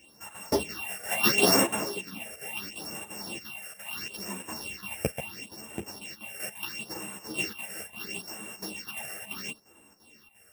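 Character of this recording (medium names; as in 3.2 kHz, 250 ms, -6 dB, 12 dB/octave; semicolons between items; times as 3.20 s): a buzz of ramps at a fixed pitch in blocks of 16 samples; phasing stages 6, 0.74 Hz, lowest notch 260–4700 Hz; chopped level 2.9 Hz, depth 65%, duty 80%; a shimmering, thickened sound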